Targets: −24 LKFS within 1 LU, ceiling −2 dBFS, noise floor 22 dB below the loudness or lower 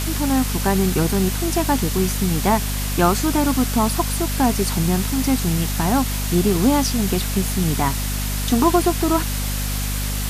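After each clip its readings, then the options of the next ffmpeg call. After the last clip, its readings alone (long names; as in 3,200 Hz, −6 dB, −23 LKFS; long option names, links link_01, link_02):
mains hum 50 Hz; hum harmonics up to 250 Hz; level of the hum −22 dBFS; background noise floor −23 dBFS; target noise floor −42 dBFS; integrated loudness −20.0 LKFS; sample peak −2.5 dBFS; target loudness −24.0 LKFS
→ -af "bandreject=frequency=50:width_type=h:width=6,bandreject=frequency=100:width_type=h:width=6,bandreject=frequency=150:width_type=h:width=6,bandreject=frequency=200:width_type=h:width=6,bandreject=frequency=250:width_type=h:width=6"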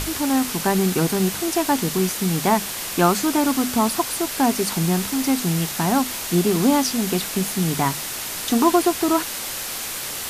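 mains hum none found; background noise floor −30 dBFS; target noise floor −43 dBFS
→ -af "afftdn=noise_reduction=13:noise_floor=-30"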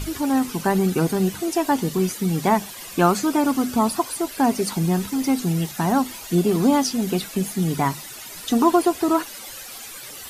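background noise floor −38 dBFS; target noise floor −44 dBFS
→ -af "afftdn=noise_reduction=6:noise_floor=-38"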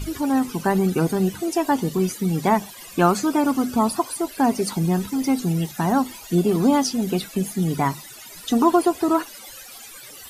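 background noise floor −41 dBFS; target noise floor −44 dBFS
→ -af "afftdn=noise_reduction=6:noise_floor=-41"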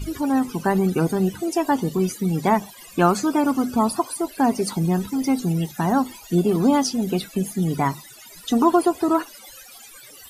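background noise floor −45 dBFS; integrated loudness −22.0 LKFS; sample peak −4.5 dBFS; target loudness −24.0 LKFS
→ -af "volume=-2dB"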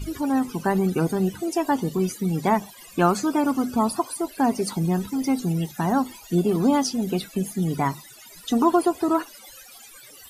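integrated loudness −24.0 LKFS; sample peak −6.5 dBFS; background noise floor −47 dBFS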